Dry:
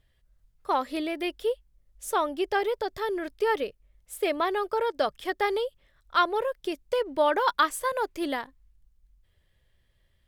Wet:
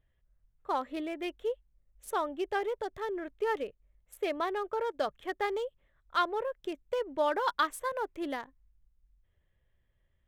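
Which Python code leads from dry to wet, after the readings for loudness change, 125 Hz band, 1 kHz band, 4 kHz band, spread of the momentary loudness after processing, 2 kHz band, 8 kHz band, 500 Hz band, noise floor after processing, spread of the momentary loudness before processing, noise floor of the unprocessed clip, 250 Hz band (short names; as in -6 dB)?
-6.0 dB, n/a, -5.5 dB, -7.5 dB, 8 LU, -6.0 dB, -9.0 dB, -5.5 dB, -74 dBFS, 10 LU, -68 dBFS, -5.5 dB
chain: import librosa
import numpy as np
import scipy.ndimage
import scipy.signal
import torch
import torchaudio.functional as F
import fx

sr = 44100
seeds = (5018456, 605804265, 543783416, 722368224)

y = fx.wiener(x, sr, points=9)
y = F.gain(torch.from_numpy(y), -5.5).numpy()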